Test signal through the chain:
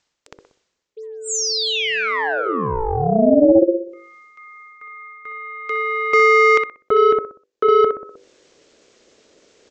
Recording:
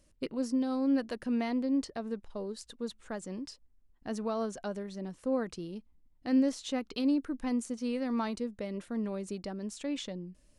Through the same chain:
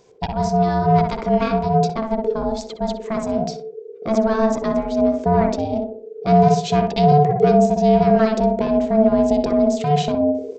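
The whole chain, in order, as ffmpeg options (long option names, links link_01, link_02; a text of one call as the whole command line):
ffmpeg -i in.wav -filter_complex "[0:a]bandreject=frequency=50:width_type=h:width=6,bandreject=frequency=100:width_type=h:width=6,bandreject=frequency=150:width_type=h:width=6,asplit=2[link_01][link_02];[link_02]adelay=62,lowpass=frequency=1200:poles=1,volume=-3dB,asplit=2[link_03][link_04];[link_04]adelay=62,lowpass=frequency=1200:poles=1,volume=0.4,asplit=2[link_05][link_06];[link_06]adelay=62,lowpass=frequency=1200:poles=1,volume=0.4,asplit=2[link_07][link_08];[link_08]adelay=62,lowpass=frequency=1200:poles=1,volume=0.4,asplit=2[link_09][link_10];[link_10]adelay=62,lowpass=frequency=1200:poles=1,volume=0.4[link_11];[link_01][link_03][link_05][link_07][link_09][link_11]amix=inputs=6:normalize=0,aeval=exprs='0.168*(cos(1*acos(clip(val(0)/0.168,-1,1)))-cos(1*PI/2))+0.00531*(cos(4*acos(clip(val(0)/0.168,-1,1)))-cos(4*PI/2))+0.00841*(cos(5*acos(clip(val(0)/0.168,-1,1)))-cos(5*PI/2))+0.00168*(cos(6*acos(clip(val(0)/0.168,-1,1)))-cos(6*PI/2))+0.00335*(cos(8*acos(clip(val(0)/0.168,-1,1)))-cos(8*PI/2))':channel_layout=same,aresample=16000,aresample=44100,asubboost=boost=8:cutoff=160,areverse,acompressor=mode=upward:threshold=-41dB:ratio=2.5,areverse,apsyclip=16.5dB,aeval=exprs='val(0)*sin(2*PI*440*n/s)':channel_layout=same,volume=-4dB" out.wav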